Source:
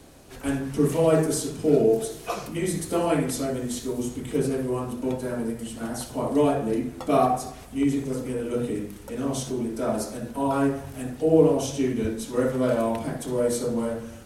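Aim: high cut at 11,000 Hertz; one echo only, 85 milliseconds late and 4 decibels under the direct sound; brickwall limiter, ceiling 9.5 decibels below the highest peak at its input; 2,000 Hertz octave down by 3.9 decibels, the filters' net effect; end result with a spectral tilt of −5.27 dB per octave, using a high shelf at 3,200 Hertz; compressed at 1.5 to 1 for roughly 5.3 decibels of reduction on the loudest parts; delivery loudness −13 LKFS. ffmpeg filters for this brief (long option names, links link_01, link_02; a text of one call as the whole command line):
ffmpeg -i in.wav -af "lowpass=11000,equalizer=frequency=2000:width_type=o:gain=-6.5,highshelf=frequency=3200:gain=3.5,acompressor=threshold=-28dB:ratio=1.5,alimiter=limit=-21dB:level=0:latency=1,aecho=1:1:85:0.631,volume=16.5dB" out.wav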